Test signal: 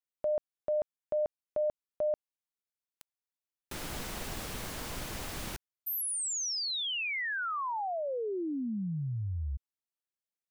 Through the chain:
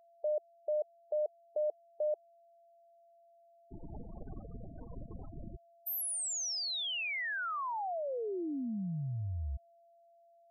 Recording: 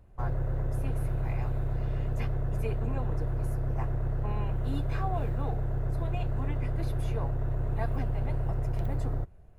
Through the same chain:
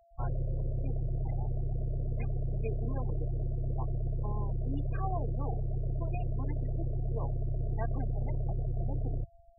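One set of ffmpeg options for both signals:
-af "afftfilt=real='re*gte(hypot(re,im),0.0282)':imag='im*gte(hypot(re,im),0.0282)':win_size=1024:overlap=0.75,aeval=exprs='val(0)+0.00112*sin(2*PI*680*n/s)':c=same,volume=0.75"

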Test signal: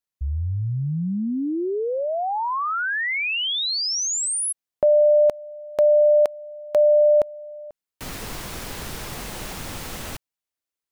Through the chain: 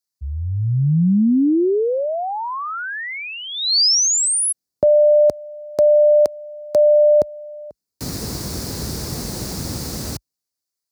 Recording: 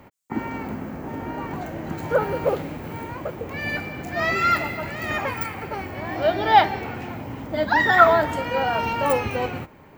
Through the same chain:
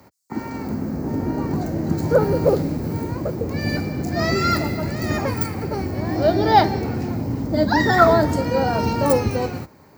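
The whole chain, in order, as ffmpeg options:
-filter_complex "[0:a]highpass=f=52:w=0.5412,highpass=f=52:w=1.3066,highshelf=f=3800:t=q:w=3:g=6.5,acrossover=split=450[s0][s1];[s0]dynaudnorm=f=110:g=13:m=3.98[s2];[s2][s1]amix=inputs=2:normalize=0,volume=0.841"

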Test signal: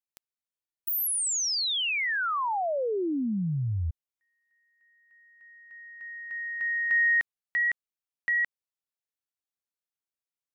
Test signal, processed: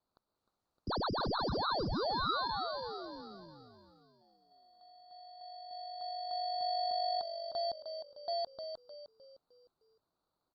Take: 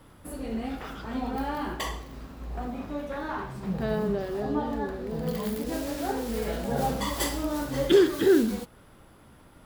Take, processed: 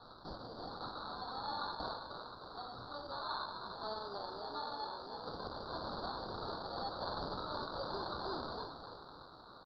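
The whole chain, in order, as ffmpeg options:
-filter_complex "[0:a]highpass=1300,acontrast=70,alimiter=limit=0.075:level=0:latency=1:release=126,acompressor=threshold=0.00282:ratio=1.5:attack=0.19:release=22:knee=1:detection=peak,asplit=6[s0][s1][s2][s3][s4][s5];[s1]adelay=306,afreqshift=48,volume=0.422[s6];[s2]adelay=612,afreqshift=96,volume=0.182[s7];[s3]adelay=918,afreqshift=144,volume=0.0776[s8];[s4]adelay=1224,afreqshift=192,volume=0.0335[s9];[s5]adelay=1530,afreqshift=240,volume=0.0145[s10];[s0][s6][s7][s8][s9][s10]amix=inputs=6:normalize=0,acrusher=samples=17:mix=1:aa=0.000001,crystalizer=i=4:c=0,aresample=11025,aresample=44100,asuperstop=centerf=2400:order=8:qfactor=0.92" -ar 48000 -c:a libopus -b:a 48k

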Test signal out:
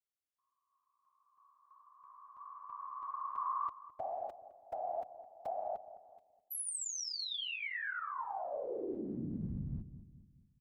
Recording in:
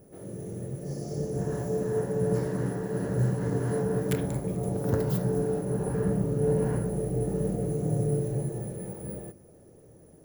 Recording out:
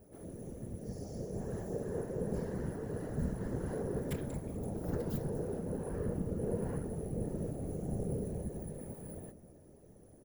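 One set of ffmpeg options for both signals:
-filter_complex "[0:a]equalizer=f=66:w=2.1:g=6,asplit=2[s0][s1];[s1]acompressor=threshold=0.01:ratio=6,volume=0.944[s2];[s0][s2]amix=inputs=2:normalize=0,afftfilt=real='hypot(re,im)*cos(2*PI*random(0))':imag='hypot(re,im)*sin(2*PI*random(1))':win_size=512:overlap=0.75,asplit=2[s3][s4];[s4]adelay=211,lowpass=f=810:p=1,volume=0.251,asplit=2[s5][s6];[s6]adelay=211,lowpass=f=810:p=1,volume=0.47,asplit=2[s7][s8];[s8]adelay=211,lowpass=f=810:p=1,volume=0.47,asplit=2[s9][s10];[s10]adelay=211,lowpass=f=810:p=1,volume=0.47,asplit=2[s11][s12];[s12]adelay=211,lowpass=f=810:p=1,volume=0.47[s13];[s3][s5][s7][s9][s11][s13]amix=inputs=6:normalize=0,volume=0.531"

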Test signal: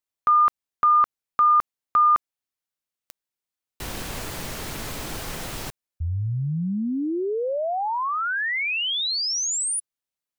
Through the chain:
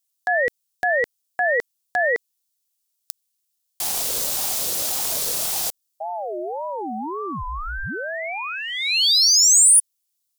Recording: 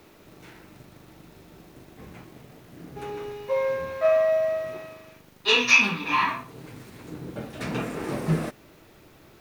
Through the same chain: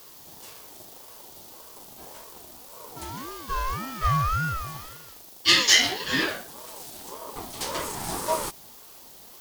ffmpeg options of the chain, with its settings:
-af "aexciter=amount=3.2:drive=9:freq=3500,aeval=exprs='val(0)*sin(2*PI*640*n/s+640*0.25/1.8*sin(2*PI*1.8*n/s))':c=same"

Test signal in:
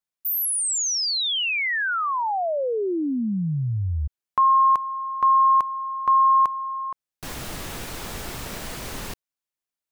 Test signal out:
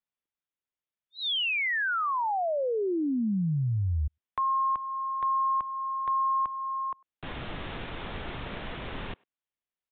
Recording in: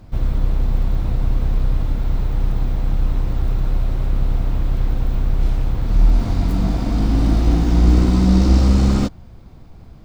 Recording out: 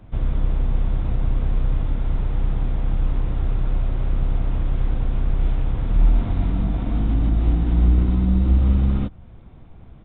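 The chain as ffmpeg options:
-filter_complex "[0:a]acrossover=split=170[s0][s1];[s1]acompressor=threshold=0.0794:ratio=8:attack=0.47:release=639:knee=2.83:detection=peak[s2];[s0][s2]amix=inputs=2:normalize=0,asplit=2[s3][s4];[s4]adelay=100,highpass=300,lowpass=3400,asoftclip=type=hard:threshold=0.0841,volume=0.0398[s5];[s3][s5]amix=inputs=2:normalize=0,aresample=8000,aresample=44100,volume=0.75"

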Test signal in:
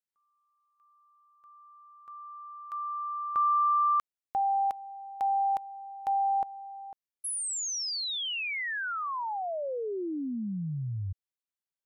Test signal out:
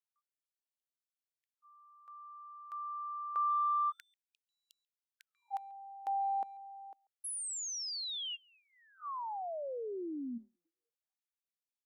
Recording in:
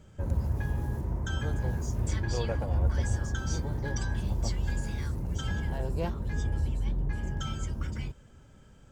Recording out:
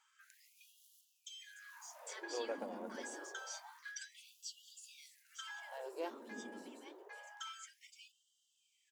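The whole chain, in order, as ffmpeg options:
-filter_complex "[0:a]asplit=2[s0][s1];[s1]adelay=140,highpass=300,lowpass=3400,asoftclip=type=hard:threshold=0.0531,volume=0.0501[s2];[s0][s2]amix=inputs=2:normalize=0,afftfilt=real='re*gte(b*sr/1024,200*pow(2800/200,0.5+0.5*sin(2*PI*0.27*pts/sr)))':imag='im*gte(b*sr/1024,200*pow(2800/200,0.5+0.5*sin(2*PI*0.27*pts/sr)))':win_size=1024:overlap=0.75,volume=0.473"

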